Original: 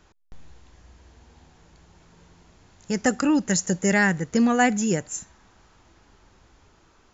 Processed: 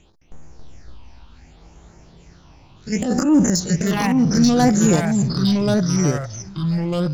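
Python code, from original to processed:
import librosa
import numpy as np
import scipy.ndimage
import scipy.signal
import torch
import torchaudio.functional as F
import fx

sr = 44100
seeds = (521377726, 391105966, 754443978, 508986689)

y = fx.spec_steps(x, sr, hold_ms=50)
y = fx.low_shelf(y, sr, hz=170.0, db=-3.5)
y = fx.transient(y, sr, attack_db=-10, sustain_db=12, at=(2.96, 3.63), fade=0.02)
y = np.clip(y, -10.0 ** (-17.5 / 20.0), 10.0 ** (-17.5 / 20.0))
y = y + 10.0 ** (-21.0 / 20.0) * np.pad(y, (int(874 * sr / 1000.0), 0))[:len(y)]
y = fx.phaser_stages(y, sr, stages=6, low_hz=410.0, high_hz=3900.0, hz=0.67, feedback_pct=45)
y = fx.echo_pitch(y, sr, ms=214, semitones=-3, count=2, db_per_echo=-3.0)
y = F.gain(torch.from_numpy(y), 7.0).numpy()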